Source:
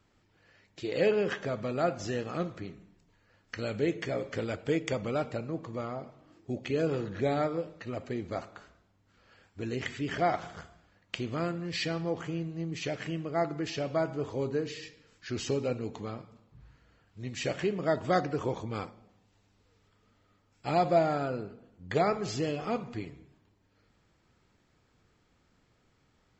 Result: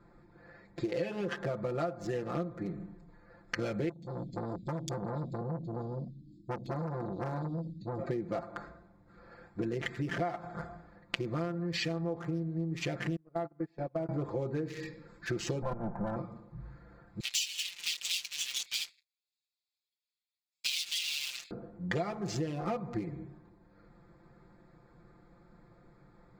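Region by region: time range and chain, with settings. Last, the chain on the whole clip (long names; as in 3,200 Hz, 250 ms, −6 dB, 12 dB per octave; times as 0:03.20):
0:03.89–0:07.99: Chebyshev band-stop filter 270–3,600 Hz, order 4 + high-shelf EQ 4,700 Hz −4 dB + saturating transformer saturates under 1,500 Hz
0:13.16–0:14.09: noise gate −32 dBFS, range −32 dB + downward compressor 1.5 to 1, threshold −52 dBFS
0:15.62–0:16.16: lower of the sound and its delayed copy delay 1.3 ms + low-pass filter 1,800 Hz 24 dB per octave + comb filter 5.1 ms, depth 30%
0:17.20–0:21.51: leveller curve on the samples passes 5 + Butterworth high-pass 2,700 Hz 48 dB per octave
whole clip: adaptive Wiener filter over 15 samples; comb filter 5.8 ms, depth 94%; downward compressor 10 to 1, threshold −39 dBFS; level +8 dB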